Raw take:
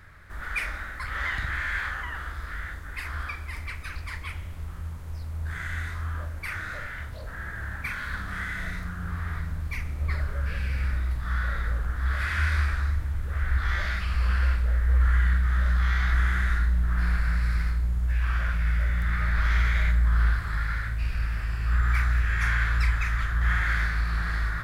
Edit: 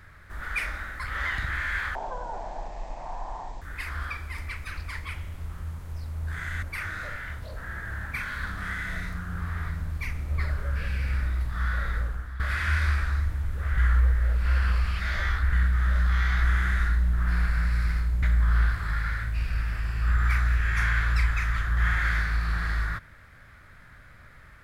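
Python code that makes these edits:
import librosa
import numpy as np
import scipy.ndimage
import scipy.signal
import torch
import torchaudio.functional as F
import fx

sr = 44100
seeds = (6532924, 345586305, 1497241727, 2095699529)

y = fx.edit(x, sr, fx.speed_span(start_s=1.95, length_s=0.85, speed=0.51),
    fx.cut(start_s=5.81, length_s=0.52),
    fx.fade_out_to(start_s=11.67, length_s=0.43, floor_db=-14.0),
    fx.reverse_span(start_s=13.48, length_s=1.75),
    fx.cut(start_s=17.93, length_s=1.94), tone=tone)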